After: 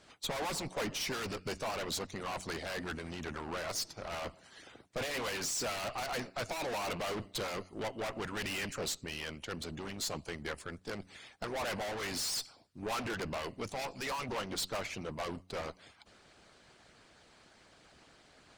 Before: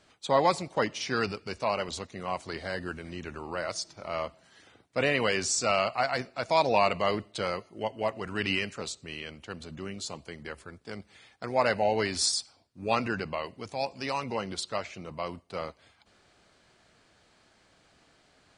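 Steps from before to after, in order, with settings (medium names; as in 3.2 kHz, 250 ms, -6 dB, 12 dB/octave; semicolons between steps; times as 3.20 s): de-hum 92.52 Hz, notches 3; valve stage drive 40 dB, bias 0.6; harmonic-percussive split harmonic -10 dB; trim +8.5 dB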